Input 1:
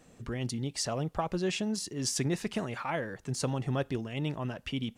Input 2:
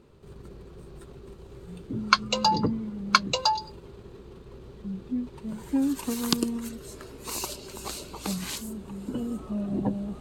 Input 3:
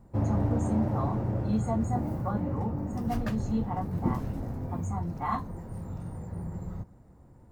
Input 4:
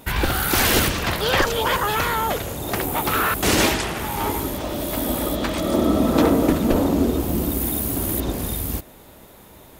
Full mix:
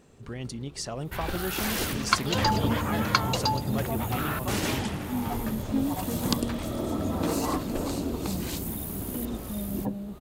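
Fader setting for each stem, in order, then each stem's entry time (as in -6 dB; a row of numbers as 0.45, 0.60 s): -2.0, -3.5, -3.0, -12.0 dB; 0.00, 0.00, 2.20, 1.05 s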